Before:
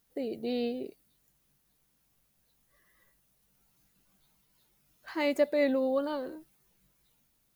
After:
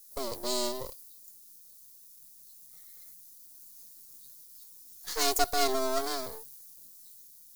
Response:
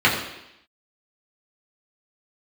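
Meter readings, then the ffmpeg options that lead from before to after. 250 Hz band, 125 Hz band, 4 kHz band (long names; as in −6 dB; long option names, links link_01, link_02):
−8.0 dB, can't be measured, +11.5 dB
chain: -af "afreqshift=130,aeval=exprs='max(val(0),0)':channel_layout=same,aexciter=amount=4.4:drive=9.3:freq=4000,volume=2.5dB"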